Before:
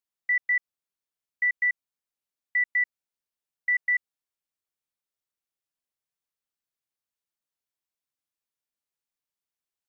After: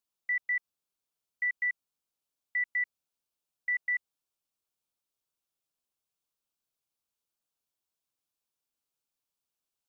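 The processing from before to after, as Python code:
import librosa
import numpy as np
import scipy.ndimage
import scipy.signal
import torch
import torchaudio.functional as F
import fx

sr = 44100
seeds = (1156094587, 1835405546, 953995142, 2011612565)

y = fx.peak_eq(x, sr, hz=1900.0, db=-9.0, octaves=0.45)
y = F.gain(torch.from_numpy(y), 2.5).numpy()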